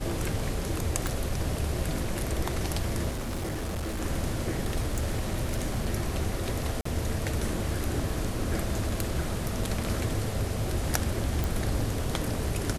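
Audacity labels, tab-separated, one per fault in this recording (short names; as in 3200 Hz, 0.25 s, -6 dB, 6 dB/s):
1.070000	1.070000	pop
3.090000	4.020000	clipped -28.5 dBFS
4.630000	5.940000	clipped -23 dBFS
6.810000	6.850000	gap 44 ms
8.710000	9.480000	clipped -20.5 dBFS
11.440000	11.440000	pop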